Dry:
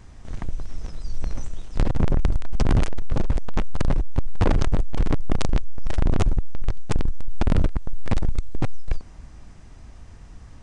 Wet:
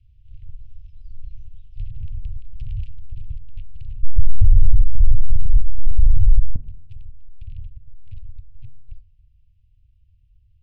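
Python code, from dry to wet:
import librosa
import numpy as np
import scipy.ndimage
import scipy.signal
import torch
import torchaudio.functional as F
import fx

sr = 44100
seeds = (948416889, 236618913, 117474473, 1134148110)

y = scipy.signal.sosfilt(scipy.signal.cheby1(4, 1.0, [120.0, 2700.0], 'bandstop', fs=sr, output='sos'), x)
y = fx.tilt_eq(y, sr, slope=-4.0, at=(4.03, 6.56))
y = fx.rider(y, sr, range_db=3, speed_s=2.0)
y = fx.air_absorb(y, sr, metres=450.0)
y = fx.rev_fdn(y, sr, rt60_s=0.9, lf_ratio=1.05, hf_ratio=0.6, size_ms=67.0, drr_db=11.5)
y = y * librosa.db_to_amplitude(-10.5)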